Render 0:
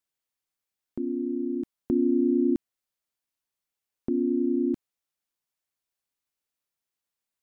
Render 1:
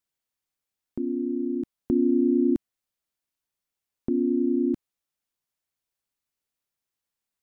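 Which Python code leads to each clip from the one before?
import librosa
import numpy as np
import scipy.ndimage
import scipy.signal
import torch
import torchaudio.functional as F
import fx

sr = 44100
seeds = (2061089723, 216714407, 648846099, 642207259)

y = fx.low_shelf(x, sr, hz=220.0, db=4.0)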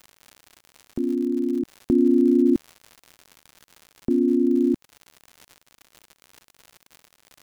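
y = fx.dmg_crackle(x, sr, seeds[0], per_s=110.0, level_db=-37.0)
y = y * 10.0 ** (4.0 / 20.0)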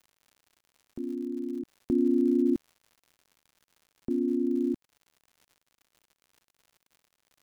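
y = fx.upward_expand(x, sr, threshold_db=-34.0, expansion=1.5)
y = y * 10.0 ** (-6.5 / 20.0)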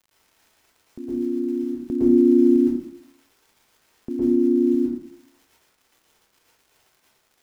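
y = fx.rev_plate(x, sr, seeds[1], rt60_s=0.64, hf_ratio=0.65, predelay_ms=100, drr_db=-8.0)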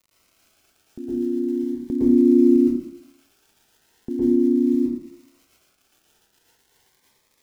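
y = fx.notch_cascade(x, sr, direction='rising', hz=0.39)
y = y * 10.0 ** (1.5 / 20.0)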